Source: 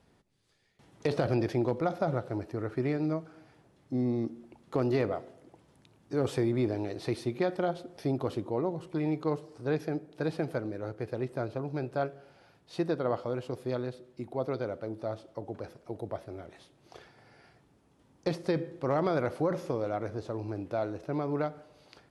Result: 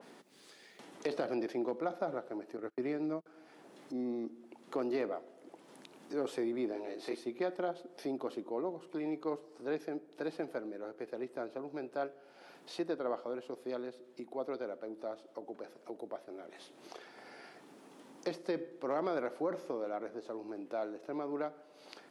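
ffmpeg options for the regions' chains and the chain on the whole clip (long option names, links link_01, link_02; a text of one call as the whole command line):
ffmpeg -i in.wav -filter_complex "[0:a]asettb=1/sr,asplit=3[link_01][link_02][link_03];[link_01]atrim=end=2.574[link_04];[link_02]atrim=start=2.57:end=3.26,asetpts=PTS-STARTPTS,afade=type=in:duration=0.004:curve=qsin,afade=type=out:start_time=0.686:duration=0.004:curve=qsin,agate=range=-31dB:threshold=-36dB:ratio=16:release=100:detection=peak,lowshelf=frequency=140:gain=7[link_05];[link_03]atrim=start=3.256[link_06];[link_04][link_05]acrossfade=duration=0.004:curve1=hsin:curve2=qsin[link_07];[link_07][link_06]acrossfade=duration=0.004:curve1=qsin:curve2=hsin,asettb=1/sr,asplit=3[link_08][link_09][link_10];[link_08]atrim=end=6.724[link_11];[link_09]atrim=start=6.72:end=7.15,asetpts=PTS-STARTPTS,afade=type=in:duration=0.004:curve=qsin,afade=type=out:start_time=0.426:duration=0.004:curve=qsin,lowshelf=frequency=200:gain=-7.5,asplit=2[link_12][link_13];[link_13]adelay=27,volume=-2.5dB[link_14];[link_12][link_14]amix=inputs=2:normalize=0,atrim=end_sample=18963[link_15];[link_10]atrim=start=7.146[link_16];[link_11][link_15]acrossfade=duration=0.004:curve1=hsin:curve2=qsin[link_17];[link_17][link_16]acrossfade=duration=0.004:curve1=qsin:curve2=hsin,highpass=frequency=230:width=0.5412,highpass=frequency=230:width=1.3066,acompressor=mode=upward:threshold=-35dB:ratio=2.5,adynamicequalizer=threshold=0.00447:dfrequency=2300:dqfactor=0.7:tfrequency=2300:tqfactor=0.7:attack=5:release=100:ratio=0.375:range=1.5:mode=cutabove:tftype=highshelf,volume=-5.5dB" out.wav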